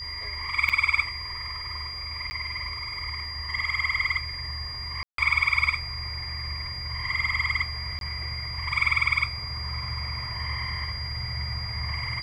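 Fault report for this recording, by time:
whistle 4,800 Hz −34 dBFS
0:00.69–0:00.70: drop-out 5.7 ms
0:02.30–0:02.31: drop-out 10 ms
0:05.03–0:05.18: drop-out 153 ms
0:07.99–0:08.01: drop-out 22 ms

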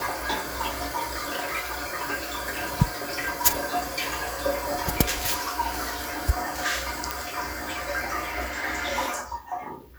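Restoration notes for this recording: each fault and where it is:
0:07.11: click

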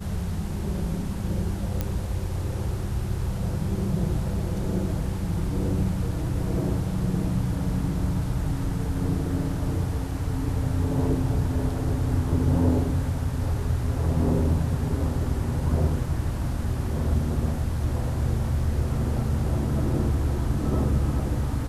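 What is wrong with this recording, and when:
0:01.81: click −13 dBFS

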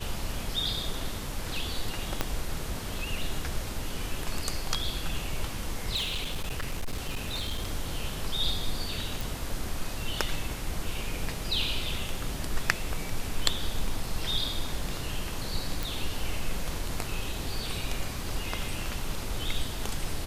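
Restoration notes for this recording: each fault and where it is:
0:02.21: click −10 dBFS
0:05.95–0:07.70: clipping −27 dBFS
0:09.21: click
0:15.83: click

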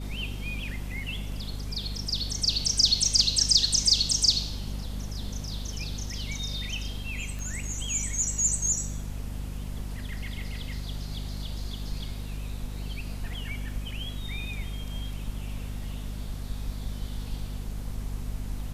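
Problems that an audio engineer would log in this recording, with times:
mains hum 50 Hz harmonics 5 −35 dBFS
0:07.39: click

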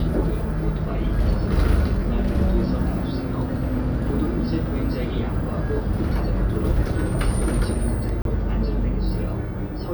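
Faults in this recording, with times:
0:08.22–0:08.25: drop-out 32 ms

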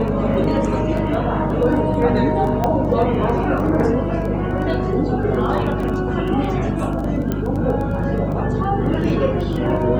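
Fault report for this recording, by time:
surface crackle 10 per second −25 dBFS
mains hum 50 Hz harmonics 5 −24 dBFS
0:02.64: click −7 dBFS
0:07.32: click −10 dBFS

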